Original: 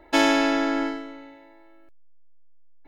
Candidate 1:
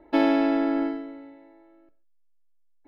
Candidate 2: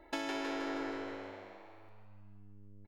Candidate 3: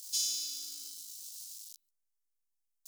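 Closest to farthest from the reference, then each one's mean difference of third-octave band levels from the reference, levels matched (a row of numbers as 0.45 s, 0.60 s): 1, 2, 3; 4.5 dB, 8.5 dB, 21.5 dB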